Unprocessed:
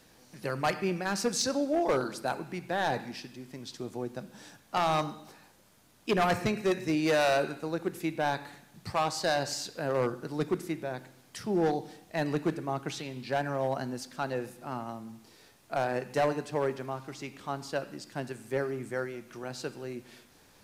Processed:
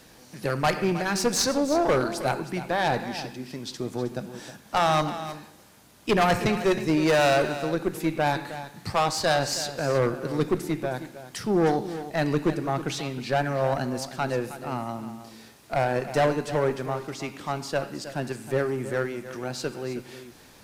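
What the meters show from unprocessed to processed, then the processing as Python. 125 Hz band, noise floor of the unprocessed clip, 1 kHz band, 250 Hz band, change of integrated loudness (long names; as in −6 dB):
+7.5 dB, −60 dBFS, +5.5 dB, +5.5 dB, +5.5 dB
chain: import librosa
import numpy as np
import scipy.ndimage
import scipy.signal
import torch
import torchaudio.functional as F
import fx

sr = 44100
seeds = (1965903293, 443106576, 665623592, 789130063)

p1 = fx.diode_clip(x, sr, knee_db=-28.0)
p2 = p1 + fx.echo_single(p1, sr, ms=315, db=-13.0, dry=0)
y = p2 * librosa.db_to_amplitude(7.5)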